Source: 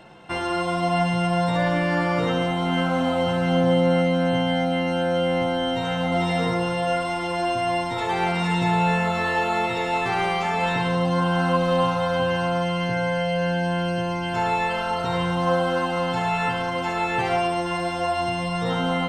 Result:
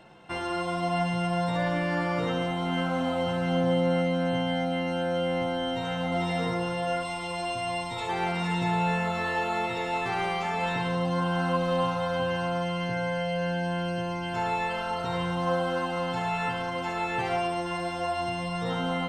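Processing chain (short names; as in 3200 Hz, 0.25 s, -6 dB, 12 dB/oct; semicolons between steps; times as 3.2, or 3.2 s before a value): 7.03–8.09 thirty-one-band EQ 315 Hz -10 dB, 630 Hz -4 dB, 1600 Hz -9 dB, 2500 Hz +4 dB, 4000 Hz +4 dB, 8000 Hz +6 dB; gain -5.5 dB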